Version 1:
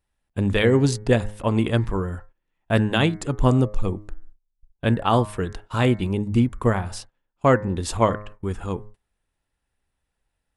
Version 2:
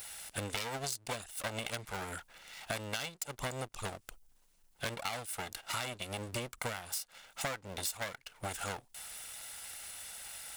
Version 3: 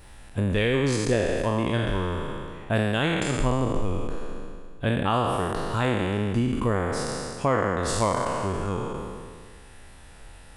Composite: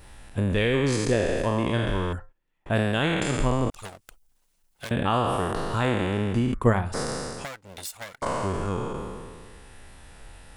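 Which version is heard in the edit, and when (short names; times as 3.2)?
3
2.13–2.66 from 1
3.7–4.91 from 2
6.54–6.94 from 1
7.44–8.22 from 2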